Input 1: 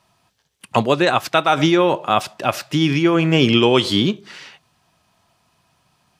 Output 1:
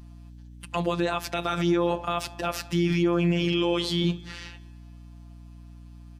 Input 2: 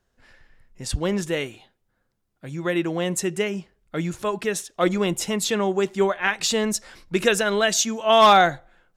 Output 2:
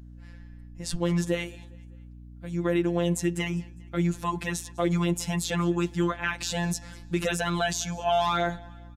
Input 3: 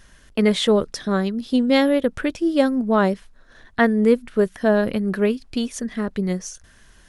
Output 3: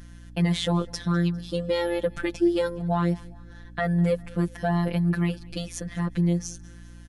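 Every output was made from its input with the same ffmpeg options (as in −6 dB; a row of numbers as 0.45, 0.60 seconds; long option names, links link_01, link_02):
-filter_complex "[0:a]afftfilt=real='hypot(re,im)*cos(PI*b)':imag='0':win_size=1024:overlap=0.75,equalizer=frequency=110:width=0.39:gain=3,alimiter=limit=-13dB:level=0:latency=1:release=64,aeval=exprs='val(0)+0.00631*(sin(2*PI*60*n/s)+sin(2*PI*2*60*n/s)/2+sin(2*PI*3*60*n/s)/3+sin(2*PI*4*60*n/s)/4+sin(2*PI*5*60*n/s)/5)':channel_layout=same,asplit=2[link_01][link_02];[link_02]aecho=0:1:202|404|606:0.0631|0.0303|0.0145[link_03];[link_01][link_03]amix=inputs=2:normalize=0"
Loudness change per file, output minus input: −9.0, −6.0, −5.5 LU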